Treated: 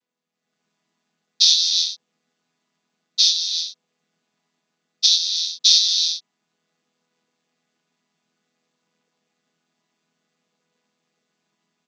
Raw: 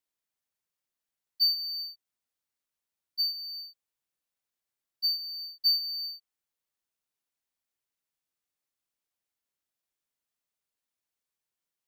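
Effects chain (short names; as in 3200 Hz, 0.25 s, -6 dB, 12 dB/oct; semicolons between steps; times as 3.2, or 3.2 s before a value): chord vocoder major triad, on E3; high shelf 5100 Hz +11.5 dB; limiter -11 dBFS, peak gain reduction 8.5 dB; air absorption 80 m; AGC gain up to 12.5 dB; gain +1.5 dB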